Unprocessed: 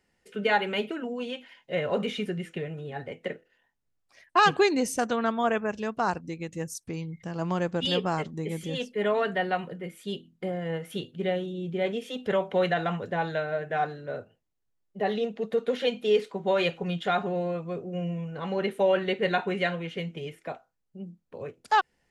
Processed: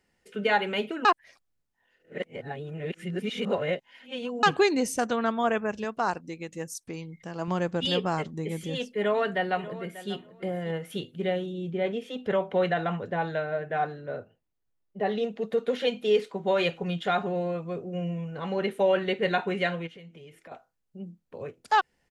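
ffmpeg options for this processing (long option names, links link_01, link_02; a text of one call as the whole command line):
ffmpeg -i in.wav -filter_complex "[0:a]asettb=1/sr,asplit=3[link_01][link_02][link_03];[link_01]atrim=end=5.844[link_04];[link_02]atrim=start=5.84:end=7.48,asetpts=PTS-STARTPTS,afade=type=in:duration=0.004:curve=qsin,afade=type=out:start_time=1.636:duration=0.004:curve=qsin,equalizer=frequency=77:width=0.61:gain=-10.5[link_05];[link_03]atrim=start=7.476[link_06];[link_04][link_05]acrossfade=duration=0.004:curve1=hsin:curve2=qsin[link_07];[link_07][link_06]acrossfade=duration=0.004:curve1=qsin:curve2=hsin,asplit=2[link_08][link_09];[link_09]afade=type=in:start_time=8.97:duration=0.01,afade=type=out:start_time=10.12:duration=0.01,aecho=0:1:590|1180:0.16788|0.0251821[link_10];[link_08][link_10]amix=inputs=2:normalize=0,asettb=1/sr,asplit=3[link_11][link_12][link_13];[link_11]atrim=end=11.714[link_14];[link_12]atrim=start=11.71:end=15.18,asetpts=PTS-STARTPTS,afade=type=in:duration=0.004:curve=qsin,afade=type=out:start_time=3.466:duration=0.004:curve=qsin,equalizer=frequency=11000:width_type=o:width=2.3:gain=-8[link_15];[link_13]atrim=start=15.176[link_16];[link_14][link_15]acrossfade=duration=0.004:curve1=hsin:curve2=qsin[link_17];[link_17][link_16]acrossfade=duration=0.004:curve1=qsin:curve2=hsin,asplit=3[link_18][link_19][link_20];[link_18]afade=type=out:start_time=19.86:duration=0.02[link_21];[link_19]acompressor=threshold=-47dB:ratio=4:attack=3.2:release=140:knee=1:detection=peak,afade=type=in:start_time=19.86:duration=0.02,afade=type=out:start_time=20.51:duration=0.02[link_22];[link_20]afade=type=in:start_time=20.51:duration=0.02[link_23];[link_21][link_22][link_23]amix=inputs=3:normalize=0,asplit=3[link_24][link_25][link_26];[link_24]atrim=end=1.052[link_27];[link_25]atrim=start=1.048:end=4.432,asetpts=PTS-STARTPTS,areverse[link_28];[link_26]atrim=start=4.428[link_29];[link_27][link_28]acrossfade=duration=0.004:curve1=hsin:curve2=hsin[link_30];[link_30][link_29]acrossfade=duration=0.004:curve1=hsin:curve2=hsin" out.wav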